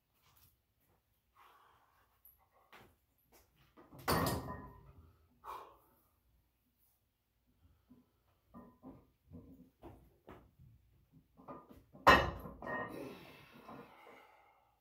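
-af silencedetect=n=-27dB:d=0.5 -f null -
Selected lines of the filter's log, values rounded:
silence_start: 0.00
silence_end: 4.08 | silence_duration: 4.08
silence_start: 4.29
silence_end: 12.07 | silence_duration: 7.78
silence_start: 12.24
silence_end: 14.80 | silence_duration: 2.56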